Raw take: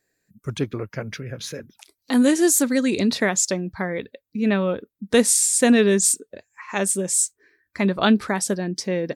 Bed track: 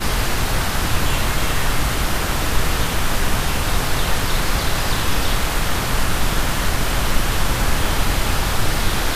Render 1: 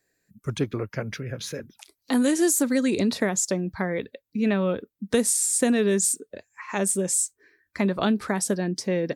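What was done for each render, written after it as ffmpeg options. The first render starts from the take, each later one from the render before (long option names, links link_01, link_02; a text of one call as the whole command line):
ffmpeg -i in.wav -filter_complex "[0:a]acrossover=split=450|1400|7200[link_01][link_02][link_03][link_04];[link_01]acompressor=threshold=-21dB:ratio=4[link_05];[link_02]acompressor=threshold=-28dB:ratio=4[link_06];[link_03]acompressor=threshold=-34dB:ratio=4[link_07];[link_04]acompressor=threshold=-22dB:ratio=4[link_08];[link_05][link_06][link_07][link_08]amix=inputs=4:normalize=0" out.wav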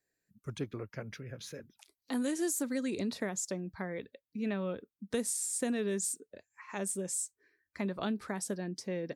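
ffmpeg -i in.wav -af "volume=-11.5dB" out.wav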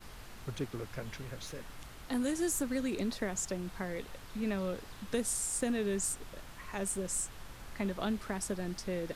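ffmpeg -i in.wav -i bed.wav -filter_complex "[1:a]volume=-30dB[link_01];[0:a][link_01]amix=inputs=2:normalize=0" out.wav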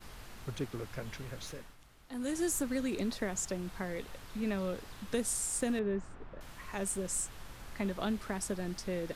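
ffmpeg -i in.wav -filter_complex "[0:a]asettb=1/sr,asplit=3[link_01][link_02][link_03];[link_01]atrim=end=5.794[link_04];[link_02]atrim=start=5.79:end=6.41,asetpts=PTS-STARTPTS,afade=type=in:duration=0.004:curve=qsin,afade=type=out:start_time=0.616:duration=0.004:curve=qsin,lowpass=1600[link_05];[link_03]atrim=start=6.406[link_06];[link_04][link_05]acrossfade=duration=0.004:curve1=hsin:curve2=qsin[link_07];[link_07][link_06]acrossfade=duration=0.004:curve1=qsin:curve2=hsin,asplit=3[link_08][link_09][link_10];[link_08]atrim=end=1.77,asetpts=PTS-STARTPTS,afade=type=out:start_time=1.5:duration=0.27:silence=0.266073[link_11];[link_09]atrim=start=1.77:end=2.1,asetpts=PTS-STARTPTS,volume=-11.5dB[link_12];[link_10]atrim=start=2.1,asetpts=PTS-STARTPTS,afade=type=in:duration=0.27:silence=0.266073[link_13];[link_11][link_12][link_13]concat=n=3:v=0:a=1" out.wav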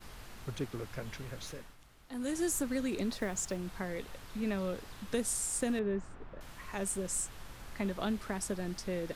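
ffmpeg -i in.wav -filter_complex "[0:a]asettb=1/sr,asplit=3[link_01][link_02][link_03];[link_01]atrim=end=3.114[link_04];[link_02]atrim=start=3.11:end=3.57,asetpts=PTS-STARTPTS,afade=type=in:duration=0.004:curve=qsin,afade=type=out:start_time=0.456:duration=0.004:curve=qsin,acrusher=bits=7:mode=log:mix=0:aa=0.000001[link_05];[link_03]atrim=start=3.566[link_06];[link_04][link_05]acrossfade=duration=0.004:curve1=hsin:curve2=qsin[link_07];[link_07][link_06]acrossfade=duration=0.004:curve1=qsin:curve2=hsin" out.wav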